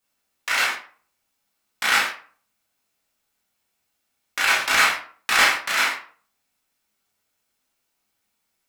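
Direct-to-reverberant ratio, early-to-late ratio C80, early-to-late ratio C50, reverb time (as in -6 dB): -5.5 dB, 11.5 dB, 5.5 dB, 0.45 s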